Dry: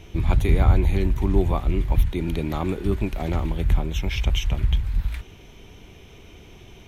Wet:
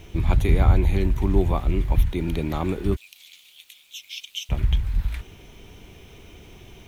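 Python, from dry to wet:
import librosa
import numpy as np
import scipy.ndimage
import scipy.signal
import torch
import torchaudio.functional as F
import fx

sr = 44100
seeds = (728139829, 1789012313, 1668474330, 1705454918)

y = fx.steep_highpass(x, sr, hz=2800.0, slope=36, at=(2.95, 4.49), fade=0.02)
y = fx.quant_dither(y, sr, seeds[0], bits=10, dither='none')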